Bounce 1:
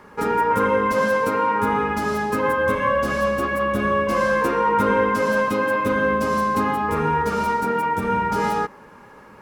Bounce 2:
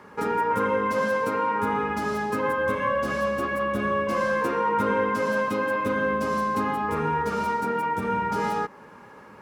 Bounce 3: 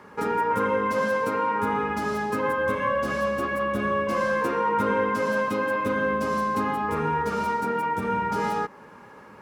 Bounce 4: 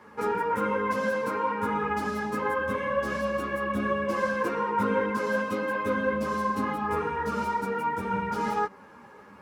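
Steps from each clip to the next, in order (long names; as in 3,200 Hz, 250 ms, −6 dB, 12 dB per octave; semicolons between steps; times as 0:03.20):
high-pass filter 77 Hz; high-shelf EQ 10,000 Hz −4.5 dB; in parallel at −2 dB: downward compressor, threshold −28 dBFS, peak gain reduction 12.5 dB; on the sum: level −6.5 dB
no processing that can be heard
string-ensemble chorus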